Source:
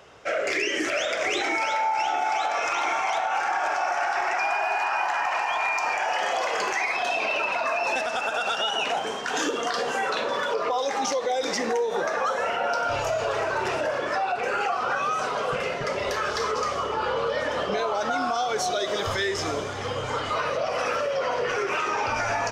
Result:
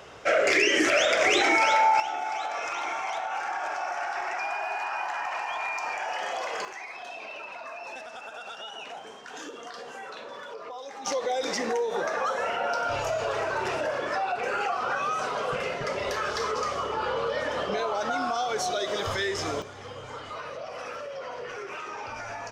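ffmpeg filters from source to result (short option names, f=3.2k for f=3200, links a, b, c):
-af "asetnsamples=n=441:p=0,asendcmd='2 volume volume -6dB;6.65 volume volume -14dB;11.06 volume volume -2.5dB;19.62 volume volume -11dB',volume=4dB"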